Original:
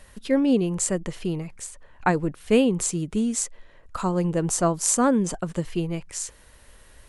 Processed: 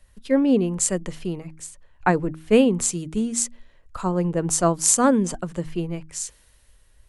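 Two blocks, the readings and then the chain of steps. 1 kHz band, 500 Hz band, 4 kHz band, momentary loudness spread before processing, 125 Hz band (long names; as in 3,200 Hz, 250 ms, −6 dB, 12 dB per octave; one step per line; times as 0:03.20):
+2.0 dB, +2.0 dB, +1.5 dB, 12 LU, +0.5 dB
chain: hum removal 79.11 Hz, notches 4
multiband upward and downward expander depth 40%
level +1 dB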